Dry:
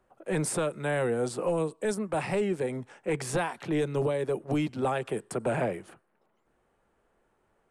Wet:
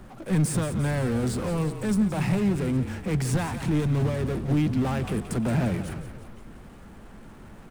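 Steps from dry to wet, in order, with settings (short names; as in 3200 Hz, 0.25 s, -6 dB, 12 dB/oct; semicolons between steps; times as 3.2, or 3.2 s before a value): power-law curve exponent 0.5; resonant low shelf 310 Hz +9.5 dB, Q 1.5; frequency-shifting echo 0.175 s, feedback 56%, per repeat -35 Hz, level -11 dB; gain -4.5 dB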